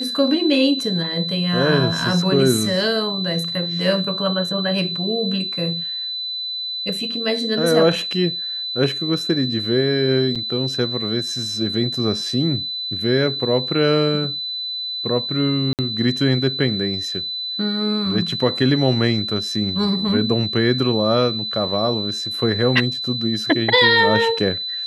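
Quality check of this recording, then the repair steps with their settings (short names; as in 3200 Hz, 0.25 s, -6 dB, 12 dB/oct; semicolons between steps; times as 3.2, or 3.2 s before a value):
tone 4000 Hz -24 dBFS
10.35–10.36 gap 6 ms
15.73–15.79 gap 58 ms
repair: notch 4000 Hz, Q 30; interpolate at 10.35, 6 ms; interpolate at 15.73, 58 ms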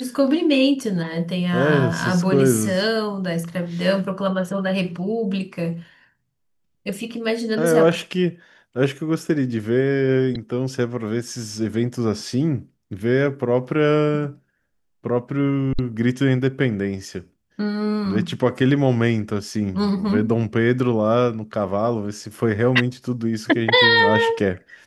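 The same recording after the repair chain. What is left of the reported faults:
none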